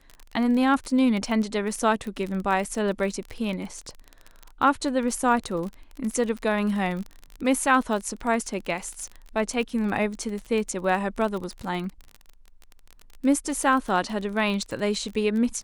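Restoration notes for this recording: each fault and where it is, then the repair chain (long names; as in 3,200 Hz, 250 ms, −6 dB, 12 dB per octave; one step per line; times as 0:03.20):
surface crackle 30 per second −30 dBFS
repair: click removal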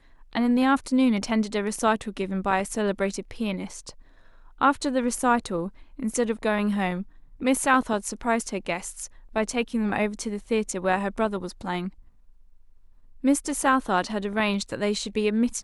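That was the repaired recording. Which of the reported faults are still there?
none of them is left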